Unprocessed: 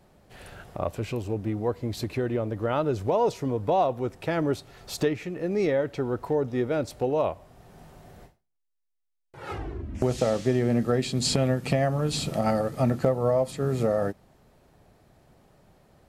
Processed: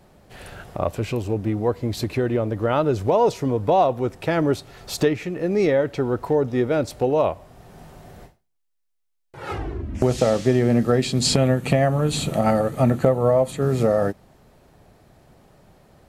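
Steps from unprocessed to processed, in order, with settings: 11.37–13.62 s: peaking EQ 5.1 kHz -12.5 dB 0.25 oct; trim +5.5 dB

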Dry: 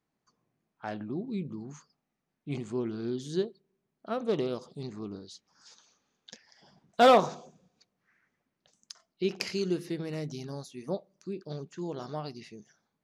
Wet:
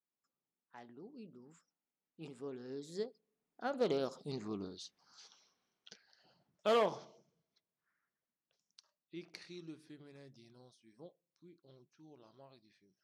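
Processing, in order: Doppler pass-by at 4.46 s, 40 m/s, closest 25 m; bass shelf 180 Hz -8 dB

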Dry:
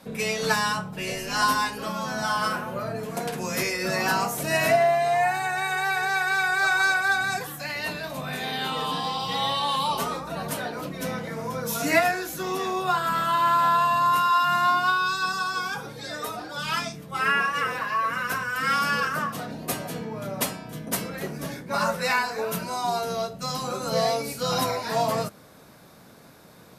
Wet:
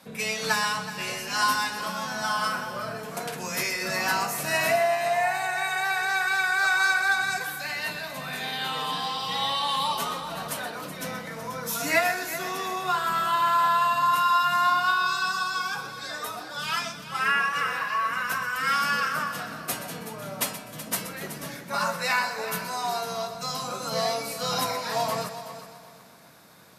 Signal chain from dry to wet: high-pass 190 Hz 6 dB/octave; peaking EQ 380 Hz -6 dB 1.8 oct; on a send: multi-head delay 125 ms, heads first and third, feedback 45%, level -13 dB

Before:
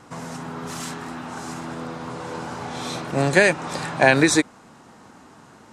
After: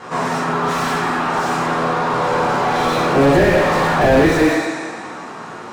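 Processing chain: two-slope reverb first 0.52 s, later 1.9 s, from -18 dB, DRR -6.5 dB; overdrive pedal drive 21 dB, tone 1.6 kHz, clips at -1 dBFS; slew-rate limiter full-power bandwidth 230 Hz; trim -1 dB

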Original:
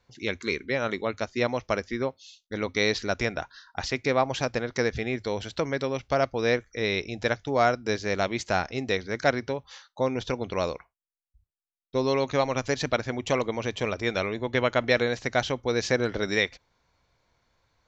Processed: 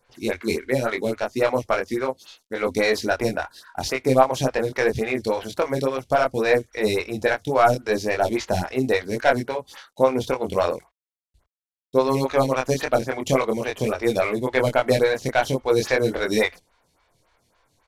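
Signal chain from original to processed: CVSD coder 64 kbps; doubling 23 ms -3 dB; lamp-driven phase shifter 3.6 Hz; trim +6.5 dB

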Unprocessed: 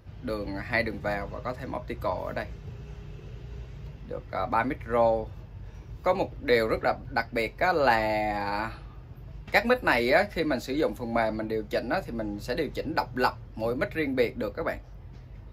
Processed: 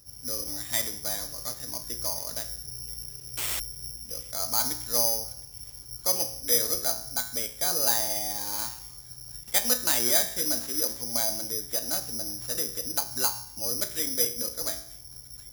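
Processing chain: feedback comb 60 Hz, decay 0.66 s, harmonics all, mix 70%; 3.37–3.60 s: painted sound noise 260–3600 Hz -37 dBFS; 6.39–8.56 s: distance through air 240 m; feedback echo behind a high-pass 715 ms, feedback 61%, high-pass 2.1 kHz, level -20.5 dB; careless resampling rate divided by 8×, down none, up zero stuff; trim -3 dB

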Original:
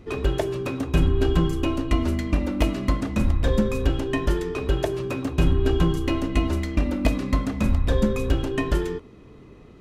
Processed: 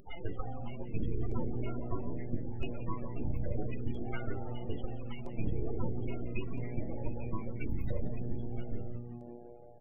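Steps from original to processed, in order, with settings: tilt shelf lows -7 dB, about 1.1 kHz; full-wave rectifier; 8.01–9.31 s: time-frequency box 260–7900 Hz -7 dB; careless resampling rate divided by 3×, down none, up zero stuff; distance through air 200 m; delay 151 ms -11.5 dB; loudest bins only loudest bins 16; upward compressor, threshold -46 dBFS; frequency-shifting echo 176 ms, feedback 64%, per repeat -120 Hz, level -13 dB; LFO notch saw down 0.76 Hz 470–7200 Hz; 4.62–6.98 s: band-stop 1.6 kHz, Q 5.9; trim -4.5 dB

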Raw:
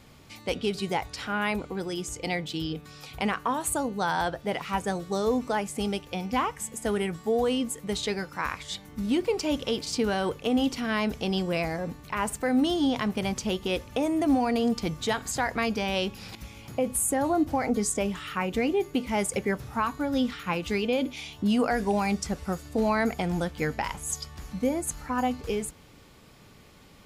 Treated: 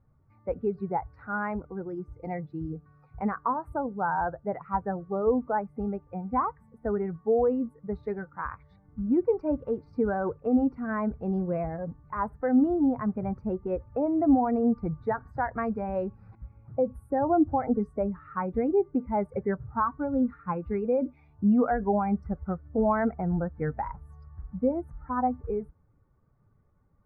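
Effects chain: expander on every frequency bin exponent 1.5; inverse Chebyshev low-pass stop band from 2.9 kHz, stop band 40 dB; trim +3.5 dB

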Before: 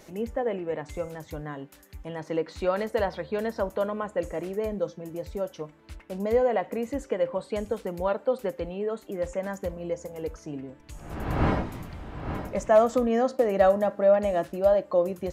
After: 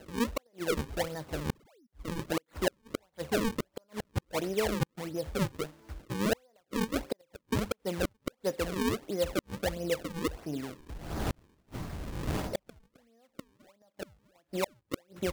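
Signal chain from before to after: painted sound fall, 1.49–1.87 s, 210–3000 Hz -21 dBFS; inverted gate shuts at -18 dBFS, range -41 dB; decimation with a swept rate 37×, swing 160% 1.5 Hz

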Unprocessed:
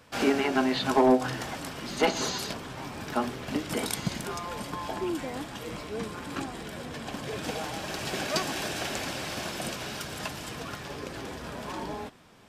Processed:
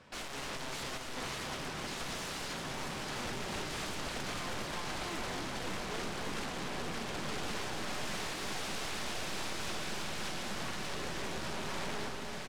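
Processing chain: comb 5.3 ms, depth 32%; valve stage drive 29 dB, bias 0.6; integer overflow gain 35.5 dB; distance through air 61 m; echo whose repeats swap between lows and highs 295 ms, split 1.5 kHz, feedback 89%, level -4.5 dB; trim +1 dB

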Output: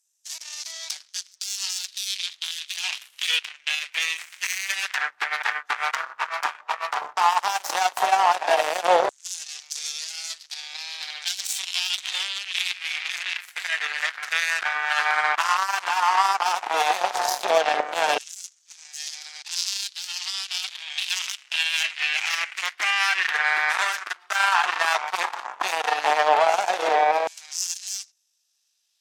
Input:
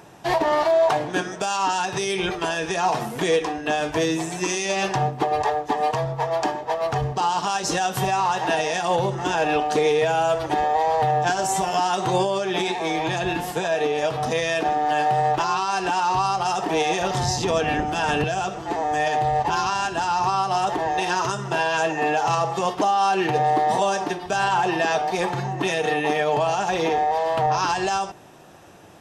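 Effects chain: hum 50 Hz, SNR 22 dB; Chebyshev shaper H 2 -10 dB, 3 -34 dB, 7 -16 dB, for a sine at -8.5 dBFS; LFO high-pass saw down 0.11 Hz 560–7000 Hz

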